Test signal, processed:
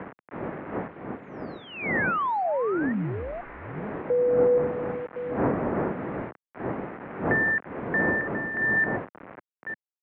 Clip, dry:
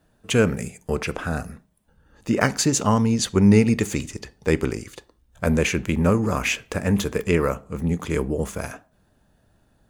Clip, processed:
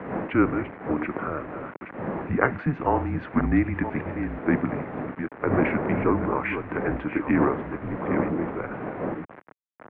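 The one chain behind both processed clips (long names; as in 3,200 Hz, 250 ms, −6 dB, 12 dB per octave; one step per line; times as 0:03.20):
delay that plays each chunk backwards 487 ms, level −9 dB
wind on the microphone 530 Hz −30 dBFS
bit reduction 6 bits
single-sideband voice off tune −140 Hz 300–2,200 Hz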